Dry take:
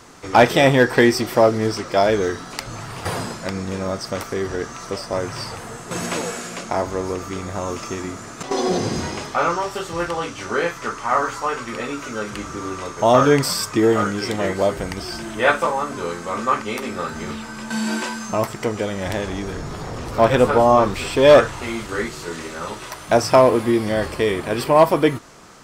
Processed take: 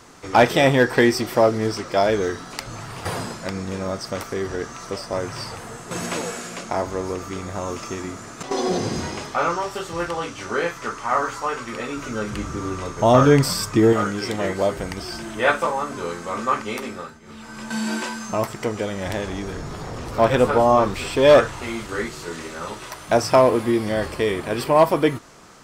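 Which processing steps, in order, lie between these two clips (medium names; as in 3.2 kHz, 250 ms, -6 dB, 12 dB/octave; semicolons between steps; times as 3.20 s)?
11.96–13.93 s: bass shelf 210 Hz +10 dB; 16.80–17.62 s: dip -19 dB, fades 0.40 s; trim -2 dB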